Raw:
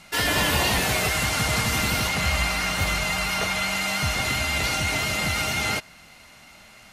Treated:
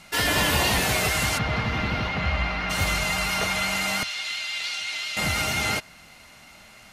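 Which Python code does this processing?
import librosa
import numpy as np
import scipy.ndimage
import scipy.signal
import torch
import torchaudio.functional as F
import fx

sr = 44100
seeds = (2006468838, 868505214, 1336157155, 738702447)

y = fx.air_absorb(x, sr, metres=280.0, at=(1.37, 2.69), fade=0.02)
y = fx.bandpass_q(y, sr, hz=3600.0, q=1.4, at=(4.03, 5.17))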